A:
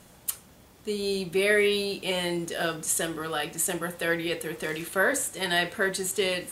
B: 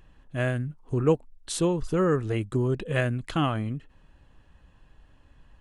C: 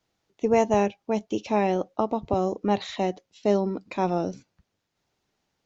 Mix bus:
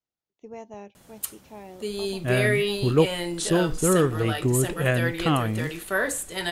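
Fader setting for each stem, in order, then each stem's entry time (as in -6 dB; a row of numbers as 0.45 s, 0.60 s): -1.0 dB, +2.5 dB, -19.5 dB; 0.95 s, 1.90 s, 0.00 s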